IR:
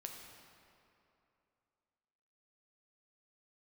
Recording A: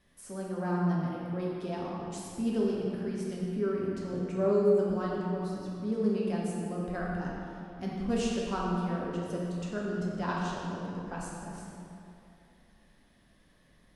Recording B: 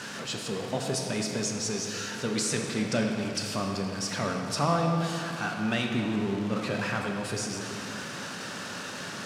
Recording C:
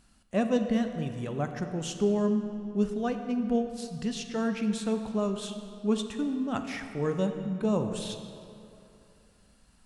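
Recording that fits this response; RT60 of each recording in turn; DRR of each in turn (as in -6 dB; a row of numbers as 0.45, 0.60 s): B; 2.8, 2.8, 2.8 s; -5.0, 1.5, 6.0 dB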